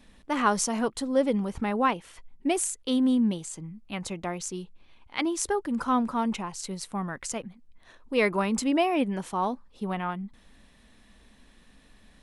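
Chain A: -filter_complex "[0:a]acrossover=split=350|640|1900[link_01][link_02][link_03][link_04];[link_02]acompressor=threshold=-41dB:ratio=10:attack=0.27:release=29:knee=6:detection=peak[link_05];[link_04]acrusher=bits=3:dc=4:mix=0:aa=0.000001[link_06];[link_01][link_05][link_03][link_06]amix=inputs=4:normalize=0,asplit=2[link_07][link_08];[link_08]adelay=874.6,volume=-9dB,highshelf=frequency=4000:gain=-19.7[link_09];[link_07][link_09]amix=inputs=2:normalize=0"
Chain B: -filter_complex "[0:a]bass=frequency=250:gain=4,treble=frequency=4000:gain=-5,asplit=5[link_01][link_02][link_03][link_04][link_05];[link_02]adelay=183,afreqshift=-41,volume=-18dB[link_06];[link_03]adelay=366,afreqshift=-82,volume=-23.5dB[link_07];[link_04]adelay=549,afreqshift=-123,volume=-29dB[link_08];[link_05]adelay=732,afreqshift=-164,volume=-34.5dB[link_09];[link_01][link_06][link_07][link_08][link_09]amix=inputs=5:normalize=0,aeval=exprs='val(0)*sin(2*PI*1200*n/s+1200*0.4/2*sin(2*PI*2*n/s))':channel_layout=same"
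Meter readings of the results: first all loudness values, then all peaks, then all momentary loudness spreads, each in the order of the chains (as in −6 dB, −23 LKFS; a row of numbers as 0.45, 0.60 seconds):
−30.0, −29.0 LKFS; −9.5, −11.0 dBFS; 16, 13 LU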